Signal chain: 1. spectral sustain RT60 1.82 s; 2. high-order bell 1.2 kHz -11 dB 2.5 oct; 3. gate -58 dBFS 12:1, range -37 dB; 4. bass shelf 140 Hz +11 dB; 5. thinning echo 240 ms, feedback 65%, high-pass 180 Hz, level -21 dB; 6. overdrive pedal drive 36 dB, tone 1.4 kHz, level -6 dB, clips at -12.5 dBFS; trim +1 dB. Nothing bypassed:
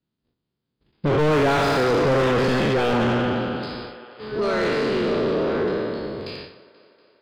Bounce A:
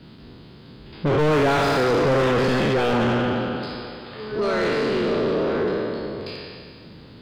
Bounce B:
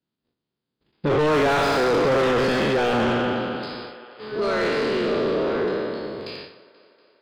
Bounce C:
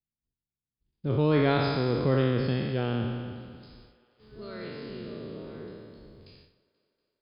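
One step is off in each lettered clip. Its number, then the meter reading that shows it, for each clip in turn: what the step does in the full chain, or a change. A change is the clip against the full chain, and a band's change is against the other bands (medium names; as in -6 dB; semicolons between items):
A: 3, momentary loudness spread change +1 LU; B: 4, 125 Hz band -5.5 dB; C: 6, crest factor change +8.5 dB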